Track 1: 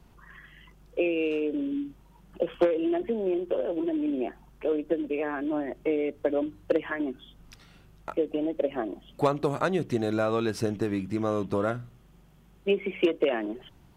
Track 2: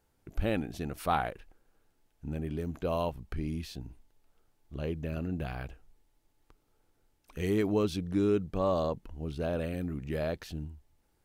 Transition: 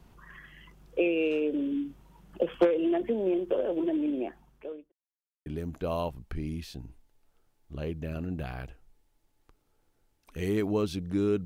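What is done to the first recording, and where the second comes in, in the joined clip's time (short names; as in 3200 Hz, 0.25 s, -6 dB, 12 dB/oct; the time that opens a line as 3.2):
track 1
3.97–4.92 fade out linear
4.92–5.46 mute
5.46 switch to track 2 from 2.47 s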